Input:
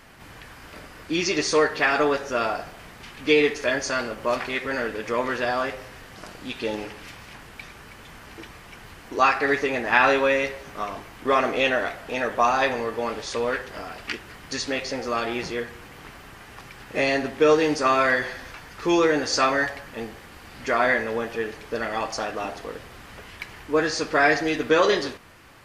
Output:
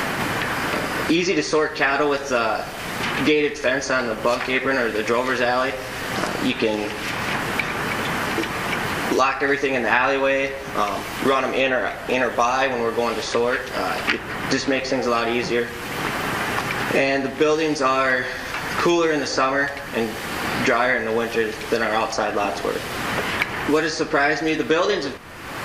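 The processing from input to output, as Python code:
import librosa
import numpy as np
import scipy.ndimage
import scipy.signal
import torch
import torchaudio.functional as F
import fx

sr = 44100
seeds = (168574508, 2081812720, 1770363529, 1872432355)

y = fx.band_squash(x, sr, depth_pct=100)
y = y * librosa.db_to_amplitude(3.0)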